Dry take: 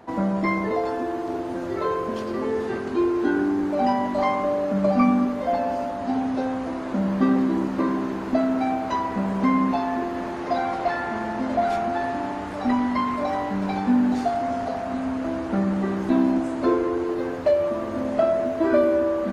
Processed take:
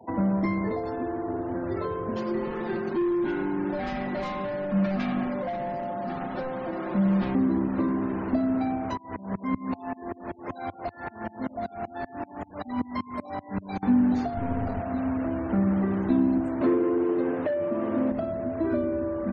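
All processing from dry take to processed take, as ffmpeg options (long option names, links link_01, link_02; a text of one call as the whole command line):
ffmpeg -i in.wav -filter_complex "[0:a]asettb=1/sr,asplit=3[link_01][link_02][link_03];[link_01]atrim=end=2.164[link_04];[link_02]atrim=start=2.16:end=7.35,asetpts=PTS-STARTPTS,afade=type=in:duration=0.004:curve=qsin,afade=type=out:start_time=5.186:duration=0.004:curve=qsin,highpass=frequency=140:poles=1,volume=24dB,asoftclip=hard,volume=-24dB,aecho=1:1:5.6:1,atrim=end_sample=228879[link_05];[link_03]atrim=start=7.346[link_06];[link_04][link_05]acrossfade=duration=0.004:curve1=hsin:curve2=qsin[link_07];[link_07][link_06]acrossfade=duration=0.004:curve1=qsin:curve2=hsin,asettb=1/sr,asplit=3[link_08][link_09][link_10];[link_08]atrim=end=8.974[link_11];[link_09]atrim=start=8.97:end=13.83,asetpts=PTS-STARTPTS,afade=type=in:duration=0.004:curve=qsin,afade=type=out:start_time=4.856:duration=0.004:curve=qsin,highshelf=frequency=6100:gain=10,aeval=exprs='val(0)*pow(10,-26*if(lt(mod(-5.2*n/s,1),2*abs(-5.2)/1000),1-mod(-5.2*n/s,1)/(2*abs(-5.2)/1000),(mod(-5.2*n/s,1)-2*abs(-5.2)/1000)/(1-2*abs(-5.2)/1000))/20)':channel_layout=same[link_12];[link_10]atrim=start=13.826[link_13];[link_11][link_12]acrossfade=duration=0.004:curve1=hsin:curve2=qsin[link_14];[link_14][link_13]acrossfade=duration=0.004:curve1=qsin:curve2=hsin,asettb=1/sr,asplit=3[link_15][link_16][link_17];[link_15]atrim=end=14.374[link_18];[link_16]atrim=start=14.37:end=14.81,asetpts=PTS-STARTPTS,afade=type=in:duration=0.004:curve=qsin,afade=type=out:start_time=0.436:duration=0.004:curve=qsin,bass=frequency=250:gain=10,treble=frequency=4000:gain=-3,aeval=exprs='clip(val(0),-1,0.0299)':channel_layout=same[link_19];[link_17]atrim=start=14.806[link_20];[link_18][link_19]acrossfade=duration=0.004:curve1=hsin:curve2=qsin[link_21];[link_21][link_20]acrossfade=duration=0.004:curve1=qsin:curve2=hsin,asettb=1/sr,asplit=3[link_22][link_23][link_24];[link_22]atrim=end=16.614[link_25];[link_23]atrim=start=16.61:end=18.12,asetpts=PTS-STARTPTS,afade=type=in:duration=0.004:curve=qsin,afade=type=out:start_time=1.506:duration=0.004:curve=qsin,aeval=exprs='0.335*sin(PI/2*1.78*val(0)/0.335)':channel_layout=same,highpass=260,lowpass=3100[link_26];[link_24]atrim=start=18.116[link_27];[link_25][link_26]acrossfade=duration=0.004:curve1=hsin:curve2=qsin[link_28];[link_28][link_27]acrossfade=duration=0.004:curve1=qsin:curve2=hsin,afftfilt=real='re*gte(hypot(re,im),0.00891)':imag='im*gte(hypot(re,im),0.00891)':win_size=1024:overlap=0.75,equalizer=frequency=93:width_type=o:width=0.62:gain=6.5,acrossover=split=300[link_29][link_30];[link_30]acompressor=threshold=-31dB:ratio=6[link_31];[link_29][link_31]amix=inputs=2:normalize=0" out.wav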